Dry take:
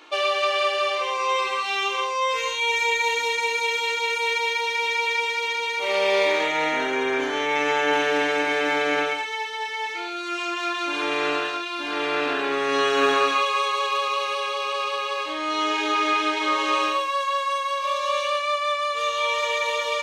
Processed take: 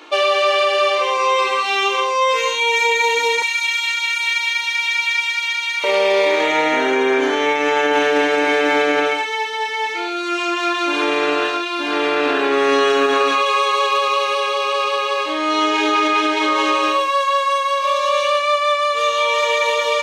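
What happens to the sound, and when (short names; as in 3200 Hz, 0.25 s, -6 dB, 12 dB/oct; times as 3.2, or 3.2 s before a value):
3.42–5.84 HPF 1300 Hz 24 dB/oct
whole clip: HPF 280 Hz 12 dB/oct; low shelf 360 Hz +10 dB; limiter -13.5 dBFS; gain +6 dB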